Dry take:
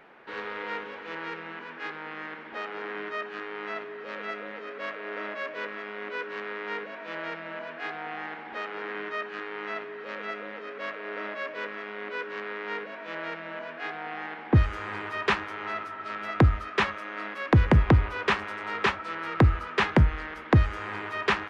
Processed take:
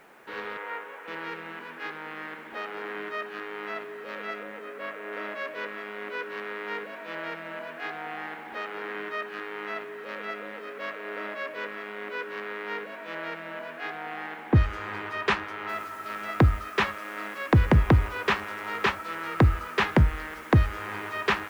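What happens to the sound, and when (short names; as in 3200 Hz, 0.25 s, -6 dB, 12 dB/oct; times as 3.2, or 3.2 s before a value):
0.57–1.08 BPF 490–2200 Hz
4.43–5.13 air absorption 190 m
15.69 noise floor step -69 dB -56 dB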